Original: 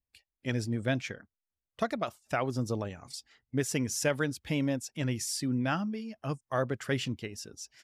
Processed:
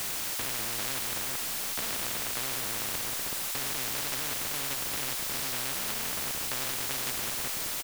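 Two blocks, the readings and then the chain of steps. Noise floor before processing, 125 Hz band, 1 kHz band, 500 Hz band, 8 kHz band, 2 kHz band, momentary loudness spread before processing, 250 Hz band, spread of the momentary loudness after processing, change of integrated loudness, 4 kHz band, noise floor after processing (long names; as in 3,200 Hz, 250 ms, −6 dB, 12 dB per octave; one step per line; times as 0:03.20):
below −85 dBFS, −12.5 dB, −0.5 dB, −8.5 dB, +8.5 dB, +2.0 dB, 11 LU, −12.5 dB, 1 LU, +3.0 dB, +8.5 dB, −34 dBFS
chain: spectrum averaged block by block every 200 ms
shaped tremolo saw down 1.7 Hz, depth 55%
slap from a distant wall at 68 metres, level −24 dB
in parallel at 0 dB: downward compressor 8 to 1, threshold −49 dBFS, peak gain reduction 20 dB
on the sum: high-frequency loss of the air 390 metres
on a send: feedback echo with a low-pass in the loop 376 ms, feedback 21%, low-pass 3,400 Hz, level −11 dB
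on the sum: dynamic equaliser 670 Hz, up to −5 dB, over −49 dBFS, Q 0.82
double-tracking delay 15 ms −8.5 dB
slack as between gear wheels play −37.5 dBFS
bit-depth reduction 10 bits, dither triangular
every bin compressed towards the loudest bin 10 to 1
level +5 dB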